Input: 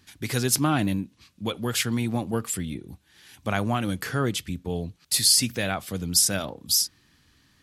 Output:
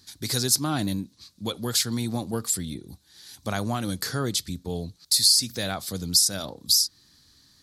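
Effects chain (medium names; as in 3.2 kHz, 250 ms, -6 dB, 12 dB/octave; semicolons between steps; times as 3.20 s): resonant high shelf 3.4 kHz +6.5 dB, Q 3; compression 2:1, threshold -20 dBFS, peak gain reduction 8.5 dB; trim -1.5 dB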